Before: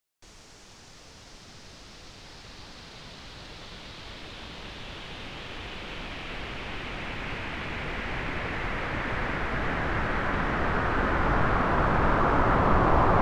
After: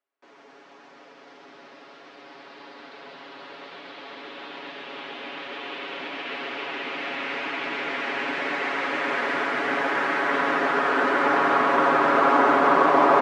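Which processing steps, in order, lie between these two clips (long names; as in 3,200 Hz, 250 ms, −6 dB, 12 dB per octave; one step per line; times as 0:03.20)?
high-pass filter 270 Hz 24 dB per octave
low-pass that shuts in the quiet parts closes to 1,600 Hz, open at −26.5 dBFS
comb filter 7.2 ms, depth 72%
on a send: single-tap delay 133 ms −4.5 dB
on the sum: level +3 dB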